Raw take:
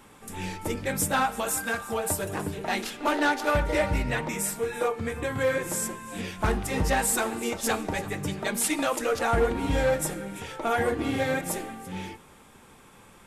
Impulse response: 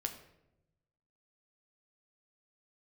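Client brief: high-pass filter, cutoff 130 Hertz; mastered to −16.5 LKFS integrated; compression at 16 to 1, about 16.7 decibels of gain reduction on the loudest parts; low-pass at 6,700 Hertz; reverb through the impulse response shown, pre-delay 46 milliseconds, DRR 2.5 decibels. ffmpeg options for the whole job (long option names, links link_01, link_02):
-filter_complex "[0:a]highpass=130,lowpass=6700,acompressor=threshold=-37dB:ratio=16,asplit=2[link_01][link_02];[1:a]atrim=start_sample=2205,adelay=46[link_03];[link_02][link_03]afir=irnorm=-1:irlink=0,volume=-2.5dB[link_04];[link_01][link_04]amix=inputs=2:normalize=0,volume=22.5dB"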